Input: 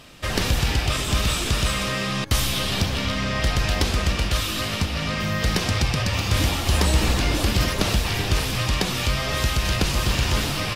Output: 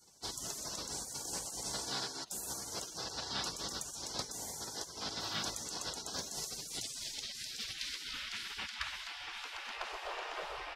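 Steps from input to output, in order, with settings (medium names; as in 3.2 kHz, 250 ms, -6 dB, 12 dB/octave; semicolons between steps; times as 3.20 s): band-pass sweep 2.2 kHz -> 210 Hz, 6.17–10.14 s; spectral gate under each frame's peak -25 dB weak; trim +12 dB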